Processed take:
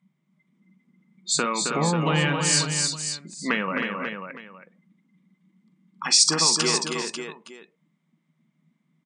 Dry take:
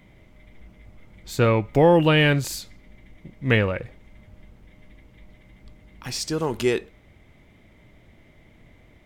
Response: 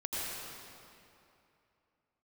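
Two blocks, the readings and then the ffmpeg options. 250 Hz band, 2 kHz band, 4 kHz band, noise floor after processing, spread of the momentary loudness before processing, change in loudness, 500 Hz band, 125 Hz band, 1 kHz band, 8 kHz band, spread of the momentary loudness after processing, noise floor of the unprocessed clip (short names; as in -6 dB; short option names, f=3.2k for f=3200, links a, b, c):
-4.0 dB, -1.0 dB, +8.0 dB, -72 dBFS, 16 LU, -0.5 dB, -8.0 dB, -5.5 dB, 0.0 dB, +15.0 dB, 17 LU, -54 dBFS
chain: -filter_complex "[0:a]afftdn=nr=35:nf=-39,equalizer=f=1.1k:w=1.6:g=14.5,afftfilt=real='re*between(b*sr/4096,140,9700)':imag='im*between(b*sr/4096,140,9700)':win_size=4096:overlap=0.75,acrossover=split=200[a][b];[b]acompressor=threshold=-27dB:ratio=16[c];[a][c]amix=inputs=2:normalize=0,crystalizer=i=7:c=0,asplit=2[d][e];[e]aecho=0:1:42|267|317|540|863:0.2|0.531|0.473|0.398|0.126[f];[d][f]amix=inputs=2:normalize=0"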